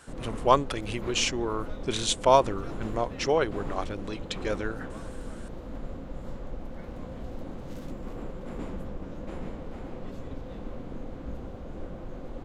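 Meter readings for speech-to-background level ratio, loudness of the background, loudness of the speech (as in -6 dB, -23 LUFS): 13.0 dB, -40.5 LUFS, -27.5 LUFS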